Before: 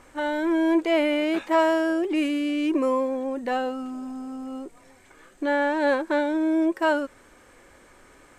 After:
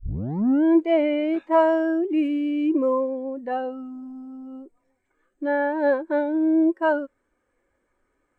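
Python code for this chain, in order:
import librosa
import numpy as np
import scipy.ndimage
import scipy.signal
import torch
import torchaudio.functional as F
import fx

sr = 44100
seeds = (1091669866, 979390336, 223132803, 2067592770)

y = fx.tape_start_head(x, sr, length_s=0.64)
y = fx.spectral_expand(y, sr, expansion=1.5)
y = y * 10.0 ** (2.0 / 20.0)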